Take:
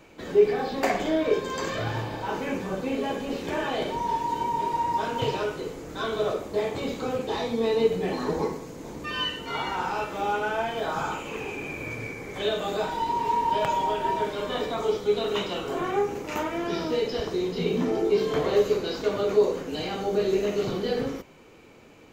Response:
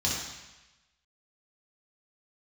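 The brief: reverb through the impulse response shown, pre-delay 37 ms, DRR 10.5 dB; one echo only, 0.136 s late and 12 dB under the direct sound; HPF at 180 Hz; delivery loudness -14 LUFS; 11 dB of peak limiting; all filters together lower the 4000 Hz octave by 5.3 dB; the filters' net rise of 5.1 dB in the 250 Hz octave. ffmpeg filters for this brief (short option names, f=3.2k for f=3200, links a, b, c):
-filter_complex "[0:a]highpass=180,equalizer=f=250:t=o:g=8,equalizer=f=4k:t=o:g=-7.5,alimiter=limit=-17.5dB:level=0:latency=1,aecho=1:1:136:0.251,asplit=2[a][b];[1:a]atrim=start_sample=2205,adelay=37[c];[b][c]afir=irnorm=-1:irlink=0,volume=-19.5dB[d];[a][d]amix=inputs=2:normalize=0,volume=13dB"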